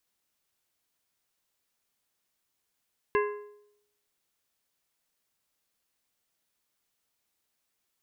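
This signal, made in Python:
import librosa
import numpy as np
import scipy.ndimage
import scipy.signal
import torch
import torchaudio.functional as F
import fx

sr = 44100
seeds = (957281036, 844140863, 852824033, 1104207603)

y = fx.strike_metal(sr, length_s=1.55, level_db=-21.5, body='plate', hz=415.0, decay_s=0.77, tilt_db=4, modes=5)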